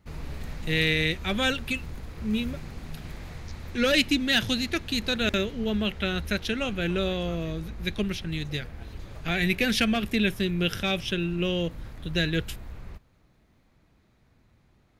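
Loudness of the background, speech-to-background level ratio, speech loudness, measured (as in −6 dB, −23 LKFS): −41.5 LKFS, 14.5 dB, −27.0 LKFS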